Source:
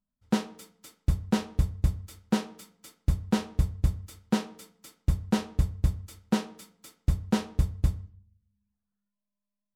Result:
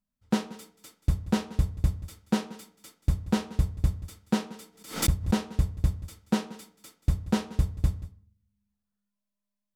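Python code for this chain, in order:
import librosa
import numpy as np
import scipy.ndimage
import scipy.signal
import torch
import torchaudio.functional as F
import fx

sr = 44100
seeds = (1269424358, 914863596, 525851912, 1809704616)

y = x + 10.0 ** (-17.5 / 20.0) * np.pad(x, (int(182 * sr / 1000.0), 0))[:len(x)]
y = fx.pre_swell(y, sr, db_per_s=130.0, at=(4.59, 5.32), fade=0.02)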